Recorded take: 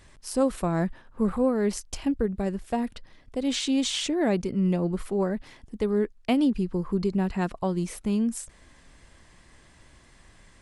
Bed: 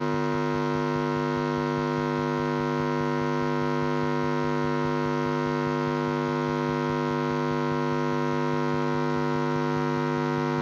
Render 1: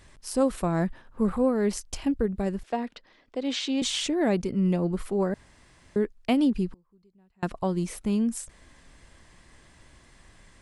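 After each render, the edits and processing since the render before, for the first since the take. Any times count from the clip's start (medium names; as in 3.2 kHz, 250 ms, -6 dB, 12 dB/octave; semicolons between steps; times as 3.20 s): 2.63–3.82 s: three-band isolator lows -18 dB, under 230 Hz, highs -19 dB, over 6.3 kHz; 5.34–5.96 s: room tone; 6.70–7.43 s: inverted gate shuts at -31 dBFS, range -35 dB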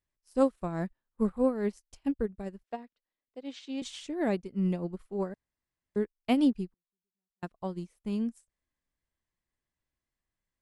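upward expansion 2.5:1, over -43 dBFS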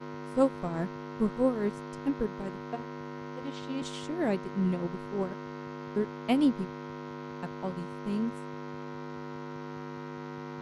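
add bed -14.5 dB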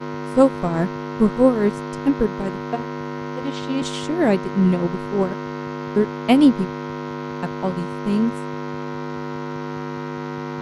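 trim +11.5 dB; peak limiter -2 dBFS, peak gain reduction 2 dB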